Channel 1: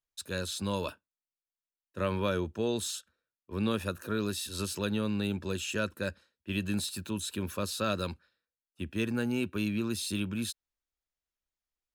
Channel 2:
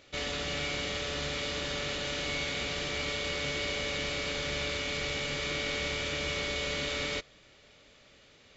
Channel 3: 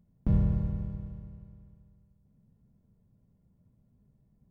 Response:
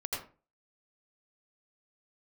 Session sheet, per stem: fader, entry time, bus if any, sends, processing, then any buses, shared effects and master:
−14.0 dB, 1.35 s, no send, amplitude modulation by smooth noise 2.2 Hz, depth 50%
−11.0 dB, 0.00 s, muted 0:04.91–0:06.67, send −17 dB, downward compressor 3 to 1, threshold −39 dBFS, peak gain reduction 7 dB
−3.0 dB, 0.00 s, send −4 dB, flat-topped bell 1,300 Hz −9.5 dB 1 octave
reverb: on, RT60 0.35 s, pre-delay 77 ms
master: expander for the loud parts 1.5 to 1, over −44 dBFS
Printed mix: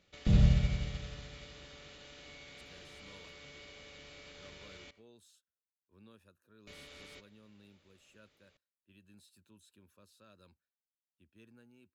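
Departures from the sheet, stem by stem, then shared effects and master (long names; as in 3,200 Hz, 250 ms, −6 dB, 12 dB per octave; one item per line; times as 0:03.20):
stem 1: entry 1.35 s → 2.40 s
stem 2 −11.0 dB → −2.5 dB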